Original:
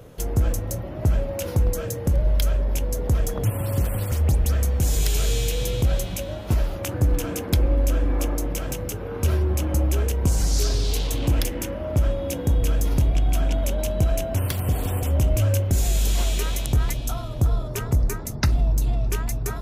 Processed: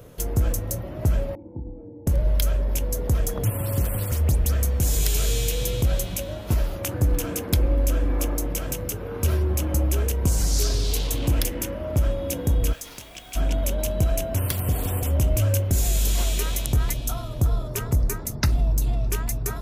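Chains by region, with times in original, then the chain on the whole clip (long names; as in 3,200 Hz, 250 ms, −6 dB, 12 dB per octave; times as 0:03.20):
0:01.35–0:02.07: formant resonators in series u + double-tracking delay 30 ms −6.5 dB
0:12.72–0:13.35: resonant band-pass 3,700 Hz, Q 0.57 + background noise pink −52 dBFS
whole clip: high-shelf EQ 8,600 Hz +7 dB; notch filter 800 Hz, Q 22; level −1 dB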